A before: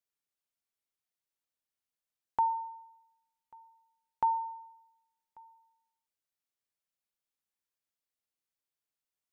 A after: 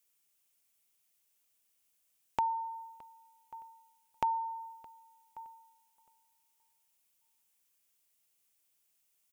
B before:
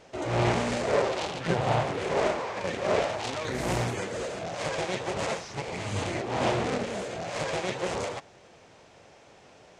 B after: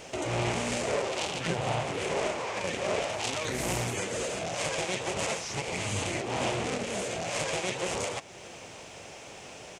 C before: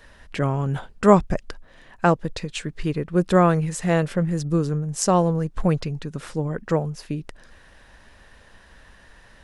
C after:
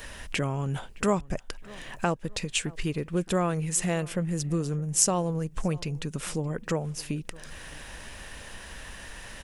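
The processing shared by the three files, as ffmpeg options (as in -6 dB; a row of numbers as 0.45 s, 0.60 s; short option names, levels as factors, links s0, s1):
-filter_complex "[0:a]acompressor=threshold=0.00631:ratio=2,aexciter=amount=2.2:drive=2.9:freq=2300,asplit=2[s0][s1];[s1]adelay=617,lowpass=f=3200:p=1,volume=0.075,asplit=2[s2][s3];[s3]adelay=617,lowpass=f=3200:p=1,volume=0.37,asplit=2[s4][s5];[s5]adelay=617,lowpass=f=3200:p=1,volume=0.37[s6];[s2][s4][s6]amix=inputs=3:normalize=0[s7];[s0][s7]amix=inputs=2:normalize=0,volume=2.24"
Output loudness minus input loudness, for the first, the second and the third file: -3.0 LU, -1.5 LU, -6.5 LU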